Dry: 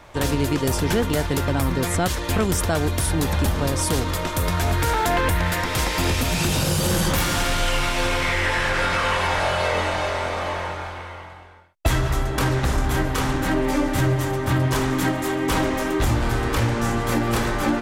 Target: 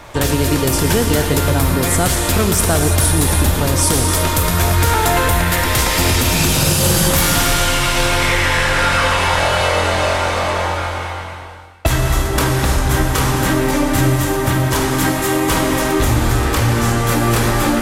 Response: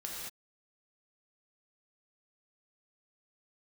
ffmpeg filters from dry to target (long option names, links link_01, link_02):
-filter_complex "[0:a]acompressor=threshold=-24dB:ratio=2,asplit=2[link_01][link_02];[1:a]atrim=start_sample=2205,asetrate=29547,aresample=44100,highshelf=frequency=5400:gain=11.5[link_03];[link_02][link_03]afir=irnorm=-1:irlink=0,volume=-5dB[link_04];[link_01][link_04]amix=inputs=2:normalize=0,volume=5.5dB"